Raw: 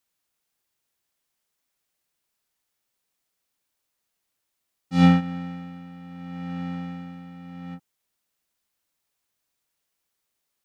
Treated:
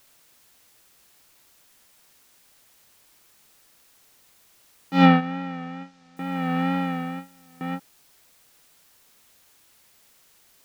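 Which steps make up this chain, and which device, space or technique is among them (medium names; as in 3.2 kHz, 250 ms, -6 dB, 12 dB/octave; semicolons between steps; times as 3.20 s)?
gate with hold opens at -32 dBFS; dictaphone (band-pass 290–3100 Hz; level rider gain up to 13.5 dB; wow and flutter; white noise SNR 29 dB); 5.06–6.17 s: low-pass 5.9 kHz 24 dB/octave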